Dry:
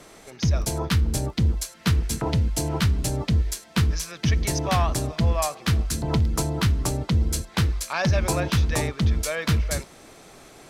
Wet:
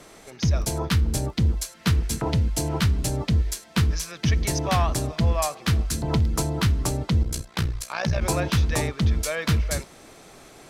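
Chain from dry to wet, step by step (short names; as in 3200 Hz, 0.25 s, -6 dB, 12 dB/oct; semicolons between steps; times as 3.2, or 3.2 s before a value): 7.23–8.22 AM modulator 61 Hz, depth 65%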